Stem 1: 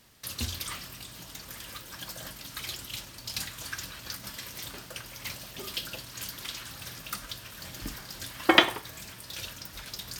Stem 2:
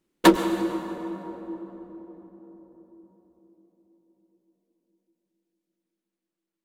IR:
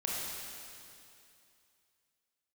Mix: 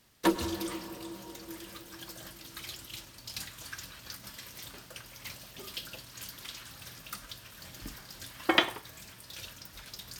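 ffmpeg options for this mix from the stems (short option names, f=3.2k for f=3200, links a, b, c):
-filter_complex "[0:a]volume=-5.5dB[a];[1:a]volume=-10.5dB[b];[a][b]amix=inputs=2:normalize=0"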